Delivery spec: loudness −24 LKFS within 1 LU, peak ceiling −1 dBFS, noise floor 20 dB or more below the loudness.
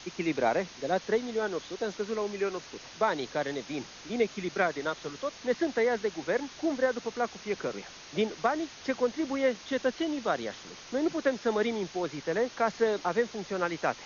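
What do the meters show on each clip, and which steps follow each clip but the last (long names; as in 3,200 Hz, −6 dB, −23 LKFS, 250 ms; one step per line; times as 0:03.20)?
background noise floor −48 dBFS; target noise floor −51 dBFS; integrated loudness −31.0 LKFS; sample peak −13.5 dBFS; target loudness −24.0 LKFS
→ broadband denoise 6 dB, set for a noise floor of −48 dBFS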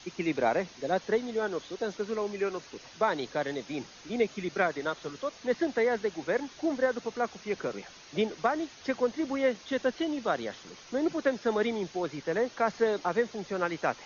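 background noise floor −51 dBFS; integrated loudness −31.0 LKFS; sample peak −13.5 dBFS; target loudness −24.0 LKFS
→ level +7 dB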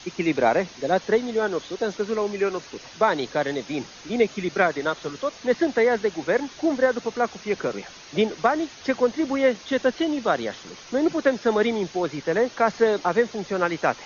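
integrated loudness −24.0 LKFS; sample peak −6.5 dBFS; background noise floor −44 dBFS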